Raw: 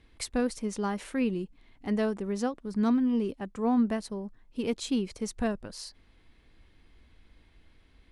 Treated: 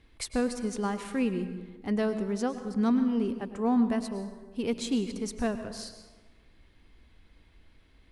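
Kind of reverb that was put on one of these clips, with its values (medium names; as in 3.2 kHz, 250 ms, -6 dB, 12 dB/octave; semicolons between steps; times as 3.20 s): plate-style reverb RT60 1.3 s, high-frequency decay 0.6×, pre-delay 90 ms, DRR 9.5 dB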